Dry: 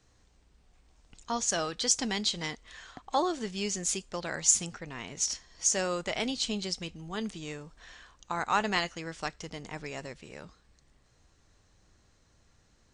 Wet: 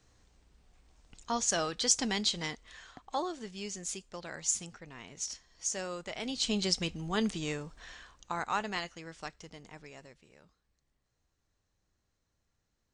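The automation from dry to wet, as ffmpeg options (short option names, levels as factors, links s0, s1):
-af "volume=3.76,afade=t=out:st=2.26:d=1.09:silence=0.446684,afade=t=in:st=6.21:d=0.5:silence=0.251189,afade=t=out:st=7.42:d=1.24:silence=0.266073,afade=t=out:st=9.25:d=1.11:silence=0.398107"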